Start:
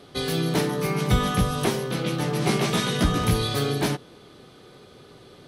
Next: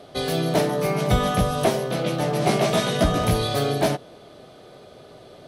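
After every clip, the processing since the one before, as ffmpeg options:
-af "equalizer=f=640:t=o:w=0.42:g=14.5"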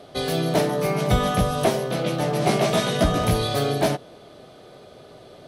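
-af anull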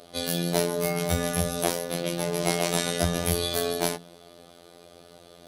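-af "crystalizer=i=2:c=0,bandreject=f=46.9:t=h:w=4,bandreject=f=93.8:t=h:w=4,bandreject=f=140.7:t=h:w=4,bandreject=f=187.6:t=h:w=4,bandreject=f=234.5:t=h:w=4,afftfilt=real='hypot(re,im)*cos(PI*b)':imag='0':win_size=2048:overlap=0.75,volume=-2dB"

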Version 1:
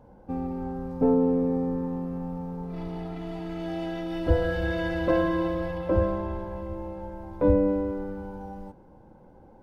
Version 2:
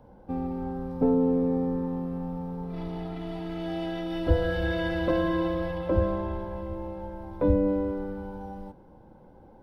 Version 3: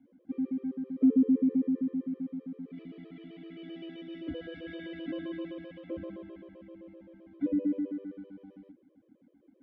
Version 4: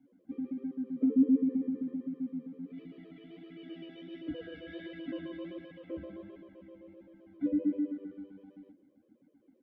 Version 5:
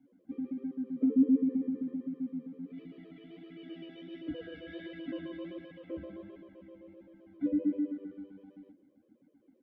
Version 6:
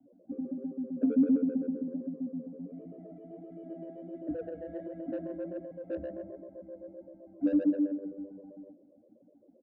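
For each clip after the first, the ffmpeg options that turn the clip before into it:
-filter_complex "[0:a]superequalizer=13b=1.41:15b=0.562,acrossover=split=310|3000[a][b][c];[b]acompressor=threshold=-24dB:ratio=6[d];[a][d][c]amix=inputs=3:normalize=0"
-filter_complex "[0:a]asplit=3[a][b][c];[a]bandpass=f=270:t=q:w=8,volume=0dB[d];[b]bandpass=f=2.29k:t=q:w=8,volume=-6dB[e];[c]bandpass=f=3.01k:t=q:w=8,volume=-9dB[f];[d][e][f]amix=inputs=3:normalize=0,equalizer=f=850:w=0.62:g=14,afftfilt=real='re*gt(sin(2*PI*7.7*pts/sr)*(1-2*mod(floor(b*sr/1024/330),2)),0)':imag='im*gt(sin(2*PI*7.7*pts/sr)*(1-2*mod(floor(b*sr/1024/330),2)),0)':win_size=1024:overlap=0.75,volume=1.5dB"
-filter_complex "[0:a]flanger=delay=6.5:depth=7.3:regen=46:speed=1.4:shape=sinusoidal,asplit=2[a][b];[b]adelay=221.6,volume=-21dB,highshelf=f=4k:g=-4.99[c];[a][c]amix=inputs=2:normalize=0,volume=1.5dB"
-af anull
-filter_complex "[0:a]lowpass=f=620:t=q:w=6.8,acrossover=split=250|440[a][b][c];[a]asplit=2[d][e];[e]adelay=17,volume=-4dB[f];[d][f]amix=inputs=2:normalize=0[g];[c]asoftclip=type=tanh:threshold=-38.5dB[h];[g][b][h]amix=inputs=3:normalize=0"

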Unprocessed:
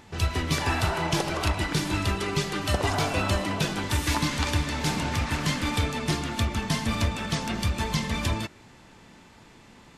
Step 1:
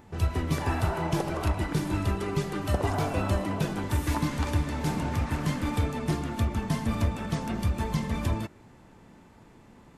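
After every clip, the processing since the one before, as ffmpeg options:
-af "equalizer=f=4.2k:t=o:w=2.8:g=-11.5"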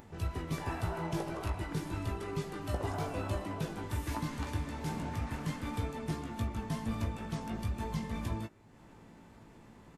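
-filter_complex "[0:a]asplit=2[a][b];[b]adelay=18,volume=-6.5dB[c];[a][c]amix=inputs=2:normalize=0,acompressor=mode=upward:threshold=-38dB:ratio=2.5,volume=-9dB"

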